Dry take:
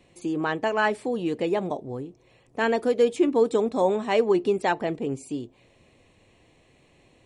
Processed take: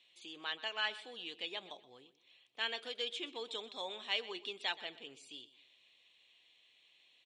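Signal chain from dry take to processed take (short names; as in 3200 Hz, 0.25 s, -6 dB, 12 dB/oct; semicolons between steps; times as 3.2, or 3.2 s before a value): band-pass 3400 Hz, Q 4.8; feedback echo 0.125 s, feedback 30%, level -17 dB; gain +6 dB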